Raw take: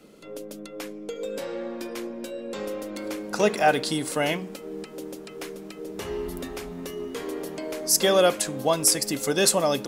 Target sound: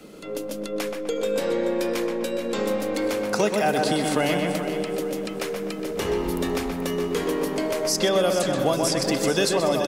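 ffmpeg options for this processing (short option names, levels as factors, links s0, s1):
-filter_complex "[0:a]asplit=2[s0][s1];[s1]adelay=126,lowpass=f=2300:p=1,volume=0.631,asplit=2[s2][s3];[s3]adelay=126,lowpass=f=2300:p=1,volume=0.49,asplit=2[s4][s5];[s5]adelay=126,lowpass=f=2300:p=1,volume=0.49,asplit=2[s6][s7];[s7]adelay=126,lowpass=f=2300:p=1,volume=0.49,asplit=2[s8][s9];[s9]adelay=126,lowpass=f=2300:p=1,volume=0.49,asplit=2[s10][s11];[s11]adelay=126,lowpass=f=2300:p=1,volume=0.49[s12];[s2][s4][s6][s8][s10][s12]amix=inputs=6:normalize=0[s13];[s0][s13]amix=inputs=2:normalize=0,acrossover=split=420|6000[s14][s15][s16];[s14]acompressor=threshold=0.0251:ratio=4[s17];[s15]acompressor=threshold=0.0282:ratio=4[s18];[s16]acompressor=threshold=0.00562:ratio=4[s19];[s17][s18][s19]amix=inputs=3:normalize=0,asplit=2[s20][s21];[s21]aecho=0:1:431|862|1293|1724:0.299|0.11|0.0409|0.0151[s22];[s20][s22]amix=inputs=2:normalize=0,volume=2.24"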